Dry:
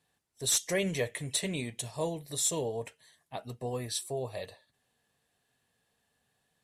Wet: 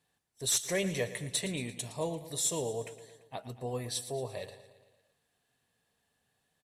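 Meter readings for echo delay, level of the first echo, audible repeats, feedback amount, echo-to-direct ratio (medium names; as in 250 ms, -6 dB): 114 ms, -14.5 dB, 5, 59%, -12.5 dB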